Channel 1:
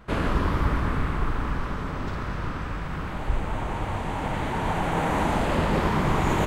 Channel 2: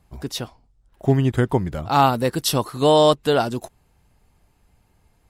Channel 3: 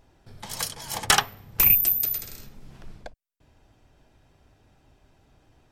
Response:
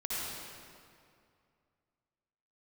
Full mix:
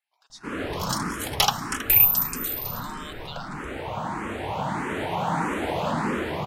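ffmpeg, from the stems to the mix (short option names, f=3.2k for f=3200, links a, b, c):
-filter_complex "[0:a]highpass=140,alimiter=limit=-17.5dB:level=0:latency=1:release=106,adelay=350,volume=-3.5dB,asplit=2[a][b];[b]volume=-7.5dB[c];[1:a]highpass=f=1k:w=0.5412,highpass=f=1k:w=1.3066,acompressor=threshold=-22dB:ratio=6,lowpass=9k,volume=-13.5dB,asplit=3[d][e][f];[e]volume=-19dB[g];[2:a]adelay=300,volume=-0.5dB,asplit=3[h][i][j];[i]volume=-20dB[k];[j]volume=-11dB[l];[f]apad=whole_len=300519[m];[a][m]sidechaincompress=threshold=-50dB:ratio=8:attack=6.3:release=152[n];[3:a]atrim=start_sample=2205[o];[c][g][k]amix=inputs=3:normalize=0[p];[p][o]afir=irnorm=-1:irlink=0[q];[l]aecho=0:1:321:1[r];[n][d][h][q][r]amix=inputs=5:normalize=0,dynaudnorm=f=190:g=7:m=4dB,asplit=2[s][t];[t]afreqshift=1.6[u];[s][u]amix=inputs=2:normalize=1"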